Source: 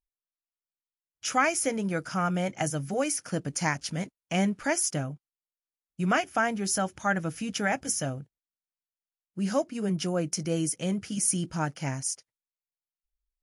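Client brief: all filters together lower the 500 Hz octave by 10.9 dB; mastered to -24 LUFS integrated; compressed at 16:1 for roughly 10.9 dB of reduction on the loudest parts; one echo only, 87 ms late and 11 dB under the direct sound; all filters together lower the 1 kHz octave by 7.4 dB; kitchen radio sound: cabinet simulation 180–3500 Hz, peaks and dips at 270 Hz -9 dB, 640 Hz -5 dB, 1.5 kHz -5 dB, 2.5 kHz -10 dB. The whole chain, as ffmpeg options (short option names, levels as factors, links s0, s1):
-af "equalizer=f=500:t=o:g=-9,equalizer=f=1000:t=o:g=-4,acompressor=threshold=0.0251:ratio=16,highpass=180,equalizer=f=270:t=q:w=4:g=-9,equalizer=f=640:t=q:w=4:g=-5,equalizer=f=1500:t=q:w=4:g=-5,equalizer=f=2500:t=q:w=4:g=-10,lowpass=f=3500:w=0.5412,lowpass=f=3500:w=1.3066,aecho=1:1:87:0.282,volume=8.41"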